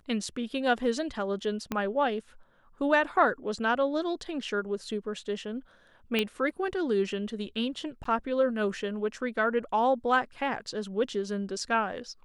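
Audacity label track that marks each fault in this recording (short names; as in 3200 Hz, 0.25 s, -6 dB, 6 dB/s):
1.720000	1.720000	pop -16 dBFS
6.190000	6.190000	pop -13 dBFS
8.040000	8.050000	gap 14 ms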